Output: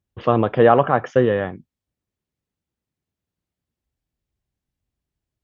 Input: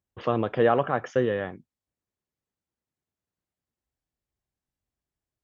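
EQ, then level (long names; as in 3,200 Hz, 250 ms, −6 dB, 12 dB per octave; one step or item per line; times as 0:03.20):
low-shelf EQ 410 Hz +10.5 dB
dynamic equaliser 940 Hz, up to +8 dB, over −32 dBFS, Q 0.73
parametric band 3,000 Hz +4.5 dB 1.6 octaves
−1.0 dB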